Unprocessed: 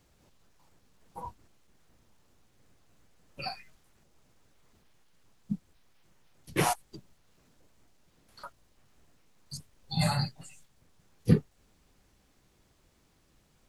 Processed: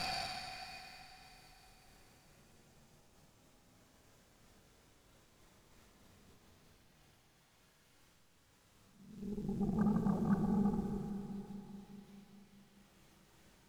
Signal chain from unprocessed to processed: Paulstretch 5.2×, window 0.50 s, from 3.57 s; Chebyshev shaper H 8 -16 dB, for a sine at -26 dBFS; Schroeder reverb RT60 3.9 s, combs from 27 ms, DRR 5.5 dB; trim +1.5 dB

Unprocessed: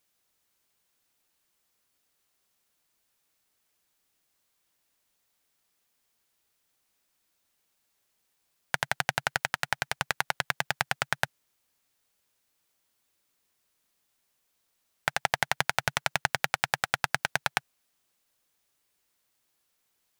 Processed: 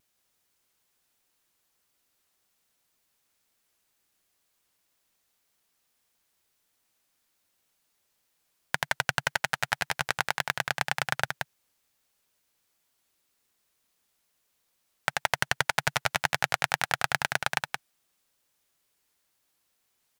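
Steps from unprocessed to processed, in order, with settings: delay 176 ms -5.5 dB; wow and flutter 54 cents

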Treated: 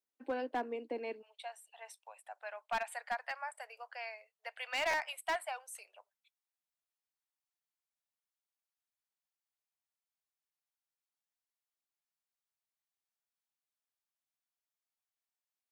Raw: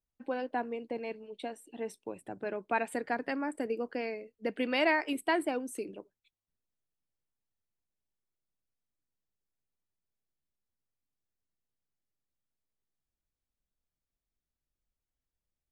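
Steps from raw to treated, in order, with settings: steep high-pass 240 Hz 48 dB/octave, from 1.21 s 660 Hz; overload inside the chain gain 27.5 dB; buffer glitch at 4.90 s, samples 512, times 2; trim -2 dB

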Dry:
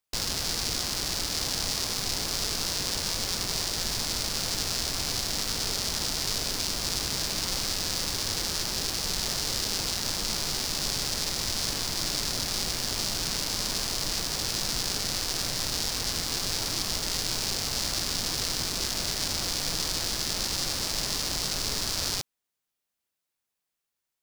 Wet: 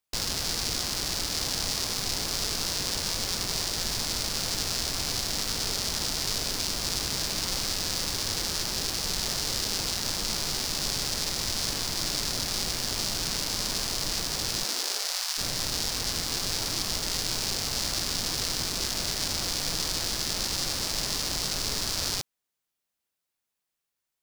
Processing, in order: 14.63–15.37 s: high-pass 220 Hz -> 920 Hz 24 dB/octave

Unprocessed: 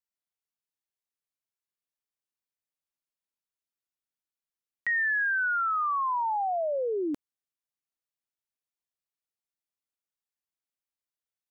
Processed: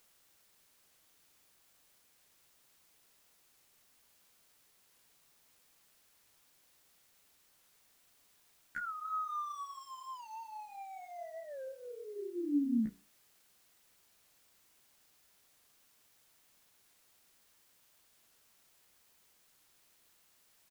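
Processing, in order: local Wiener filter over 9 samples; pitch shift -5.5 st; FFT filter 130 Hz 0 dB, 240 Hz +8 dB, 410 Hz -8 dB, 1.1 kHz -16 dB, 1.8 kHz +10 dB, 2.6 kHz -5 dB, 4.2 kHz -6 dB, 6.3 kHz +8 dB; granular stretch 1.8×, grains 64 ms; band-passed feedback delay 72 ms, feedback 66%, band-pass 820 Hz, level -24 dB; low-pass that closes with the level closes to 1.5 kHz, closed at -32 dBFS; hum notches 60/120/180/240/300/360/420/480/540 Hz; chorus voices 4, 0.39 Hz, delay 15 ms, depth 2.5 ms; feedback comb 99 Hz, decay 0.24 s, harmonics all, mix 50%; word length cut 12-bit, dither triangular; warped record 45 rpm, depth 100 cents; trim +3.5 dB

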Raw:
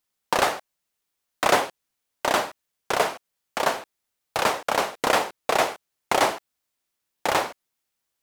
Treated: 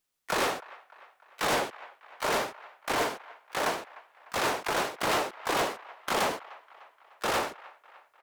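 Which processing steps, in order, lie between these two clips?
harmony voices -7 st -2 dB, +7 st -1 dB, +12 st -18 dB; feedback echo behind a band-pass 300 ms, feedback 54%, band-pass 1.4 kHz, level -23 dB; saturation -17.5 dBFS, distortion -9 dB; trim -5 dB

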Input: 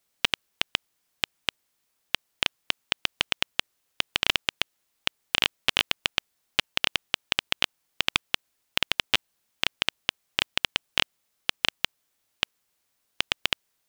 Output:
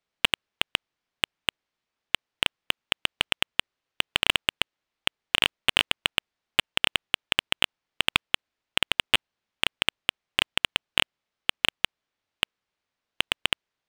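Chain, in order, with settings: low-pass 3.7 kHz 12 dB/octave; waveshaping leveller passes 2

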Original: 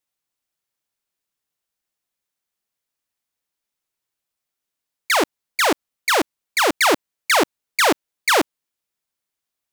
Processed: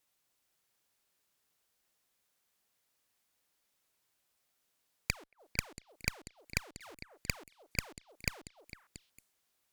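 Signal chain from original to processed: inverted gate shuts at -25 dBFS, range -42 dB; repeats whose band climbs or falls 227 ms, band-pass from 550 Hz, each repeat 1.4 oct, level -4.5 dB; Chebyshev shaper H 8 -8 dB, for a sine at -20.5 dBFS; trim +4.5 dB

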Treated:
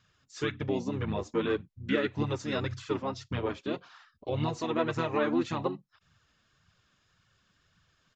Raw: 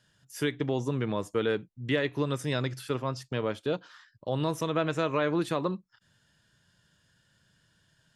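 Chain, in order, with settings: flange 1.8 Hz, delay 0.6 ms, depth 3.5 ms, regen +4%; harmony voices -5 st -3 dB; resampled via 16 kHz

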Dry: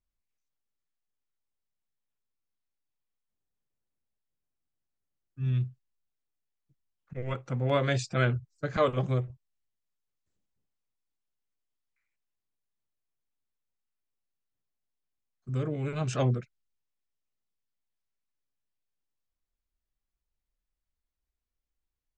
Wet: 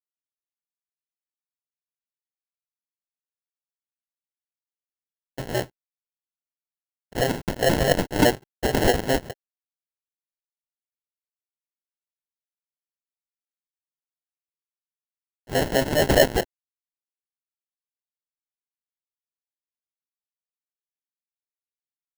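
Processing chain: harmonic-percussive split harmonic -7 dB; fuzz box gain 46 dB, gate -53 dBFS; LFO band-pass sine 4.8 Hz 510–5300 Hz; sample-rate reducer 1.2 kHz, jitter 0%; trim +5 dB

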